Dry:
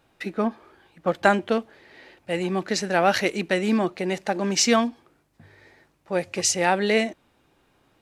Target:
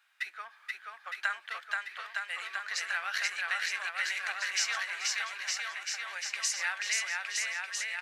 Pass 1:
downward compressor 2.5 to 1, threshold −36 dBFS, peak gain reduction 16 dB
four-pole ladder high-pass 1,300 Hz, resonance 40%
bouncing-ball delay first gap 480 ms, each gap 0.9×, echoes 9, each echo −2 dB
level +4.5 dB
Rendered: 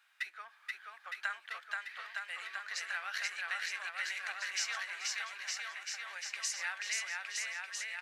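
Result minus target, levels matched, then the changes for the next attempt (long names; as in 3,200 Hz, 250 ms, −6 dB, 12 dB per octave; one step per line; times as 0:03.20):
downward compressor: peak gain reduction +5.5 dB
change: downward compressor 2.5 to 1, threshold −27 dBFS, peak gain reduction 10.5 dB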